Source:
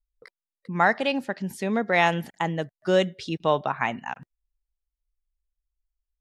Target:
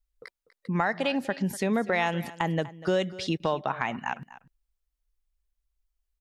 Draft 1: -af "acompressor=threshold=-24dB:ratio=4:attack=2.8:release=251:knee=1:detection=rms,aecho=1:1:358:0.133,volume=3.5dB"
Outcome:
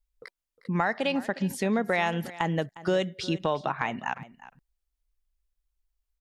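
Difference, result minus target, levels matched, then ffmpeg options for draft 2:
echo 113 ms late
-af "acompressor=threshold=-24dB:ratio=4:attack=2.8:release=251:knee=1:detection=rms,aecho=1:1:245:0.133,volume=3.5dB"

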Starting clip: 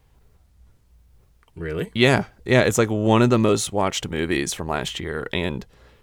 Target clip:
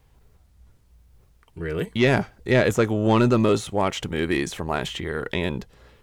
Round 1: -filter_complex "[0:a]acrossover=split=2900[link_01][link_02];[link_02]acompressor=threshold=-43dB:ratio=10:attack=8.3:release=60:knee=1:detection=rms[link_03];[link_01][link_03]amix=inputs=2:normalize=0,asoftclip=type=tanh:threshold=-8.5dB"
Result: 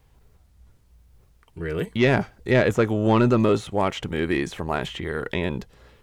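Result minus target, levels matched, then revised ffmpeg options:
downward compressor: peak gain reduction +7.5 dB
-filter_complex "[0:a]acrossover=split=2900[link_01][link_02];[link_02]acompressor=threshold=-34.5dB:ratio=10:attack=8.3:release=60:knee=1:detection=rms[link_03];[link_01][link_03]amix=inputs=2:normalize=0,asoftclip=type=tanh:threshold=-8.5dB"

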